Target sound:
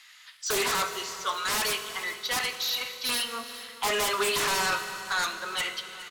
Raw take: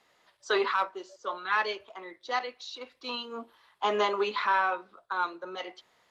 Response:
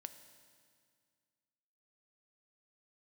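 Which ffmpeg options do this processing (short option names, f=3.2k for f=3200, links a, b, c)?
-filter_complex "[0:a]acrossover=split=190|1500[a][b][c];[b]acrusher=bits=7:mix=0:aa=0.000001[d];[c]aeval=exprs='0.0841*sin(PI/2*7.94*val(0)/0.0841)':c=same[e];[a][d][e]amix=inputs=3:normalize=0,aecho=1:1:415|830|1245|1660|2075:0.141|0.0777|0.0427|0.0235|0.0129[f];[1:a]atrim=start_sample=2205,asetrate=32634,aresample=44100[g];[f][g]afir=irnorm=-1:irlink=0"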